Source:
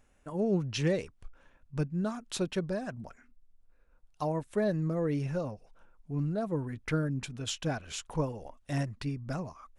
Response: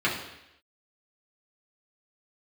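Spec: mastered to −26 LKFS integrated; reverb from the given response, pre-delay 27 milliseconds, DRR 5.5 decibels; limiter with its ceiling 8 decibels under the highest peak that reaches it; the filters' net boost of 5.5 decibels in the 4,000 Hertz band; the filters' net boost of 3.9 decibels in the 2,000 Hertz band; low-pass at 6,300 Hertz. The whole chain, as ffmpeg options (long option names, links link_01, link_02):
-filter_complex "[0:a]lowpass=6300,equalizer=frequency=2000:width_type=o:gain=3.5,equalizer=frequency=4000:width_type=o:gain=6.5,alimiter=level_in=1.5dB:limit=-24dB:level=0:latency=1,volume=-1.5dB,asplit=2[link_01][link_02];[1:a]atrim=start_sample=2205,adelay=27[link_03];[link_02][link_03]afir=irnorm=-1:irlink=0,volume=-19dB[link_04];[link_01][link_04]amix=inputs=2:normalize=0,volume=8.5dB"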